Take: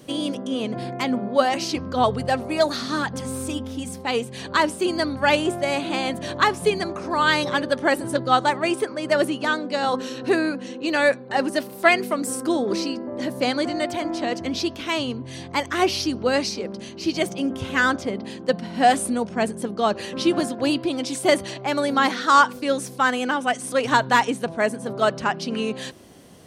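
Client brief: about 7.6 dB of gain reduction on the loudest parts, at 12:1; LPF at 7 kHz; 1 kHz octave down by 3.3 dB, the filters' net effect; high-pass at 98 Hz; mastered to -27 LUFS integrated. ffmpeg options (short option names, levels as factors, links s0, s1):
-af "highpass=98,lowpass=7000,equalizer=f=1000:t=o:g=-4.5,acompressor=threshold=0.0891:ratio=12,volume=1.06"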